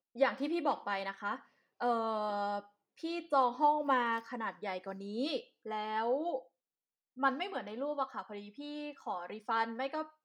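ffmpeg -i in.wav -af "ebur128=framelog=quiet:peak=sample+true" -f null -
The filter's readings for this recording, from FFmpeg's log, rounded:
Integrated loudness:
  I:         -35.5 LUFS
  Threshold: -45.8 LUFS
Loudness range:
  LRA:         4.7 LU
  Threshold: -55.7 LUFS
  LRA low:   -38.5 LUFS
  LRA high:  -33.8 LUFS
Sample peak:
  Peak:      -15.5 dBFS
True peak:
  Peak:      -15.5 dBFS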